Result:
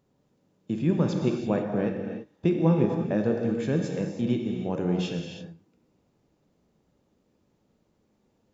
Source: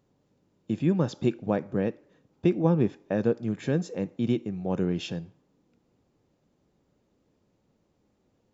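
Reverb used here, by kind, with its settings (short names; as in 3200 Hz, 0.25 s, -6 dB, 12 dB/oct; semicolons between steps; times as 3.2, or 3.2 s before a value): non-linear reverb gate 0.36 s flat, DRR 2 dB; gain -1 dB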